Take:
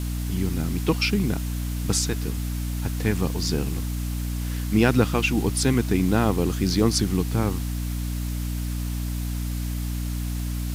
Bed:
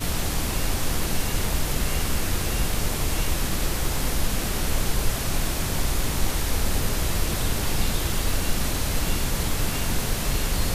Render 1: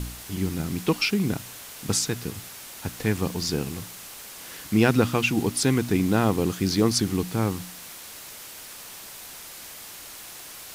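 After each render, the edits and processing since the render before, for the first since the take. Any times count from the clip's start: de-hum 60 Hz, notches 5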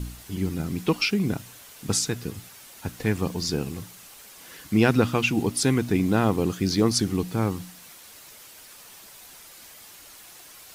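denoiser 7 dB, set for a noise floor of -42 dBFS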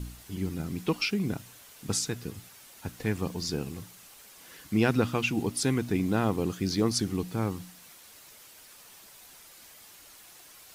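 gain -5 dB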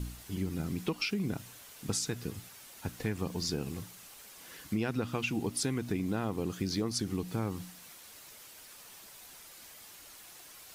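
compressor 5:1, threshold -29 dBFS, peak gain reduction 9.5 dB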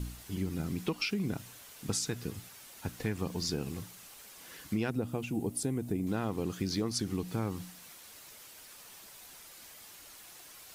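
4.9–6.07 band shelf 2500 Hz -10 dB 2.9 oct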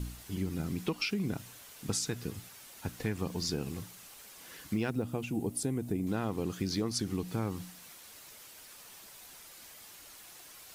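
4.28–5.03 block floating point 7-bit

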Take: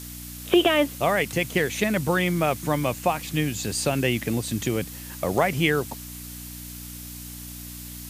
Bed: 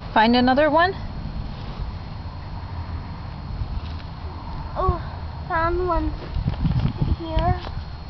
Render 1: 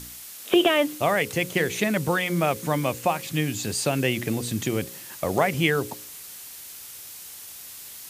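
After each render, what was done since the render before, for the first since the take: de-hum 60 Hz, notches 9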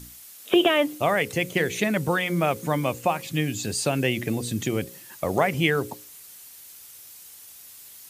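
denoiser 7 dB, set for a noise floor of -42 dBFS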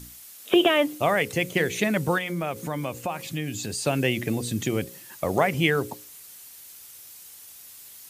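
2.18–3.87 compressor 2:1, threshold -29 dBFS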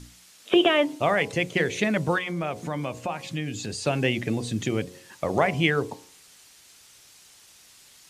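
LPF 6600 Hz 12 dB/oct; de-hum 90.61 Hz, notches 12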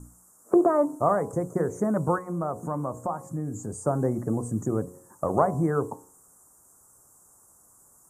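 elliptic band-stop 1200–7600 Hz, stop band 70 dB; dynamic EQ 1200 Hz, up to +3 dB, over -40 dBFS, Q 0.94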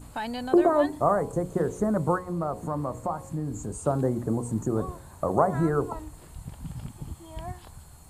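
add bed -16.5 dB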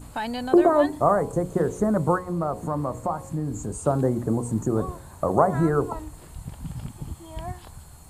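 gain +3 dB

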